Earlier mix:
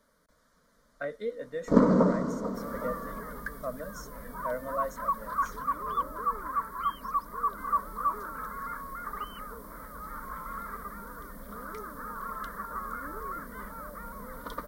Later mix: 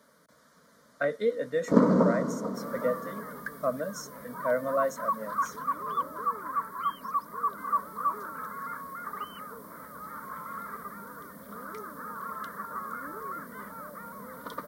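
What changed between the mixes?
speech +7.0 dB; master: add high-pass 97 Hz 24 dB/octave

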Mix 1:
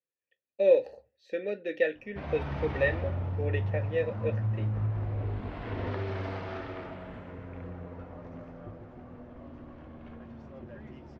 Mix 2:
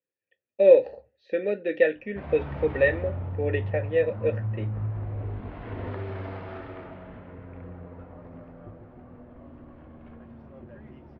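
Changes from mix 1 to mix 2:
speech +7.0 dB; master: add distance through air 250 m

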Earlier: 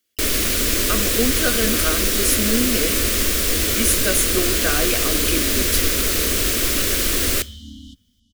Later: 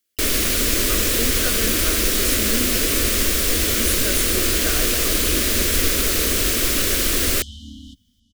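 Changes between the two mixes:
speech -5.0 dB; first sound +3.5 dB; reverb: off

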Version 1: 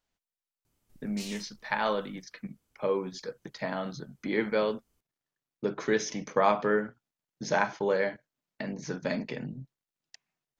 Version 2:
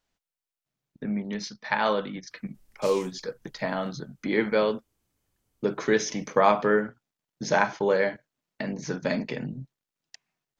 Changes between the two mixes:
speech +4.0 dB; background: entry +1.65 s

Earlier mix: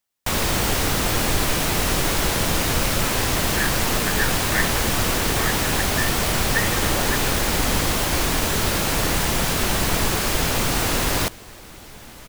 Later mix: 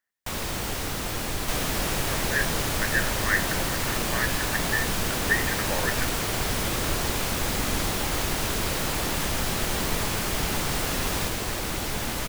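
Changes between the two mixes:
speech: entry -1.25 s; first sound -9.0 dB; second sound +12.0 dB

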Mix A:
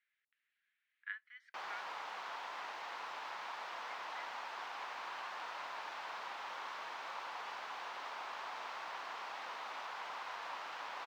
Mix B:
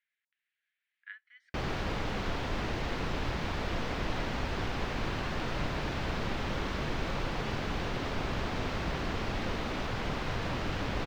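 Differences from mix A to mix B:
background +10.0 dB; master: remove resonant high-pass 930 Hz, resonance Q 2.3

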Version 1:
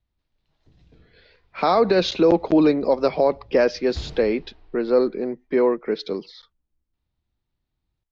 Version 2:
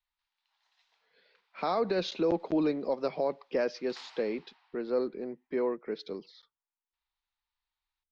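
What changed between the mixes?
speech -11.5 dB; background: add Chebyshev high-pass 860 Hz, order 4

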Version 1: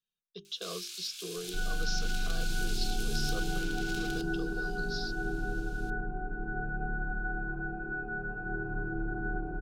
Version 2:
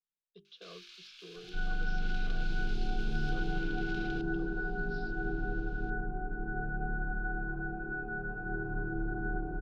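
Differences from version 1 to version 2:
speech -9.0 dB; master: add distance through air 270 m

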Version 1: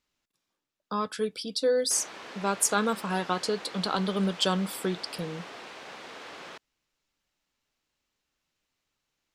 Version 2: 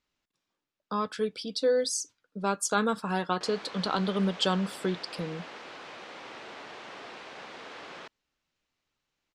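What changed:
background: entry +1.50 s; master: add distance through air 57 m

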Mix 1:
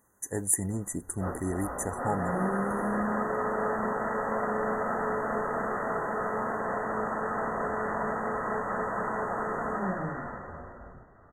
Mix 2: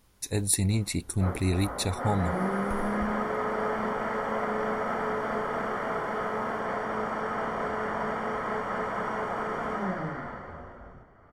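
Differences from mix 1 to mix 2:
speech: remove high-pass 270 Hz 6 dB/octave; master: remove brick-wall FIR band-stop 2–6 kHz

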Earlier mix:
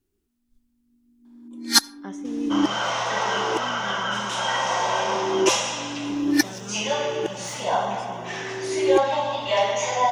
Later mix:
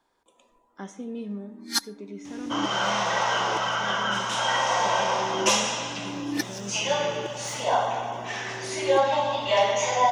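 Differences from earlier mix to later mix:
speech: entry -1.25 s; first sound -9.0 dB

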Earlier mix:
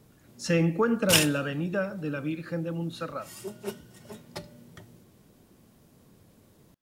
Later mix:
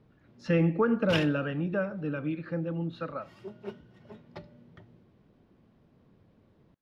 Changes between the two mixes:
background -3.5 dB; master: add distance through air 300 m

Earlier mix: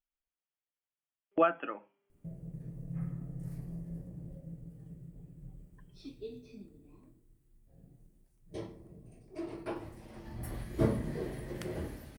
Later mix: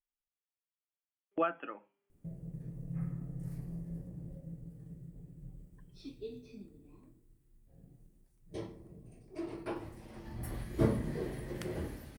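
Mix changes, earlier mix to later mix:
speech -4.5 dB; master: add peaking EQ 640 Hz -2.5 dB 0.25 oct

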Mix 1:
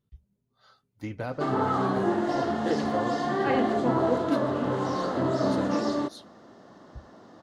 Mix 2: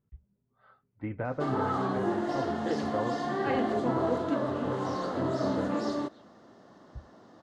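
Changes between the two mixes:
speech: add low-pass 2.2 kHz 24 dB/octave; background -4.0 dB

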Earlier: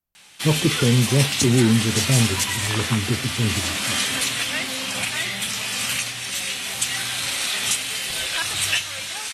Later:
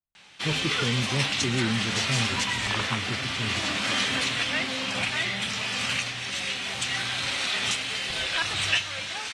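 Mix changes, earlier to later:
speech -10.5 dB; master: add distance through air 110 m

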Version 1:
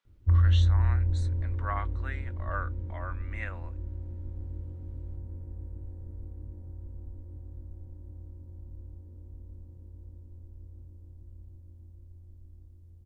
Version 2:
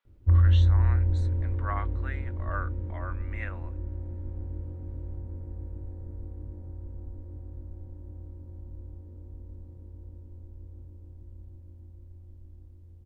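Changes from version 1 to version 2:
background +6.0 dB; master: add tone controls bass -4 dB, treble -7 dB

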